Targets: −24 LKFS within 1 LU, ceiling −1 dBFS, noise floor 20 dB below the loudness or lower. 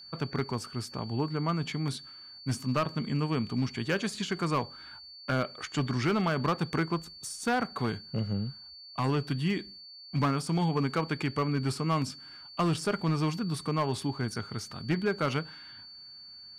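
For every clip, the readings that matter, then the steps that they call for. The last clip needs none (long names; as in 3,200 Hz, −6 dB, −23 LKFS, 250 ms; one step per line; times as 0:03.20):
share of clipped samples 1.2%; peaks flattened at −21.5 dBFS; interfering tone 4,500 Hz; level of the tone −46 dBFS; integrated loudness −31.5 LKFS; sample peak −21.5 dBFS; target loudness −24.0 LKFS
→ clipped peaks rebuilt −21.5 dBFS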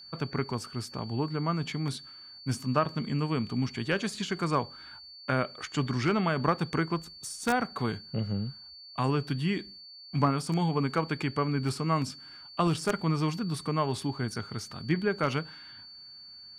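share of clipped samples 0.0%; interfering tone 4,500 Hz; level of the tone −46 dBFS
→ notch filter 4,500 Hz, Q 30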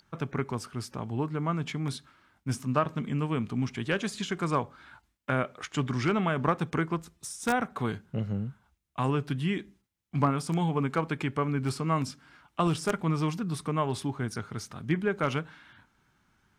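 interfering tone none found; integrated loudness −31.0 LKFS; sample peak −12.5 dBFS; target loudness −24.0 LKFS
→ level +7 dB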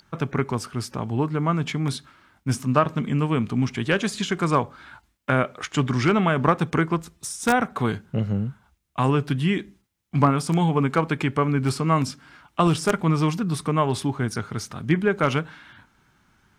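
integrated loudness −24.0 LKFS; sample peak −5.5 dBFS; background noise floor −66 dBFS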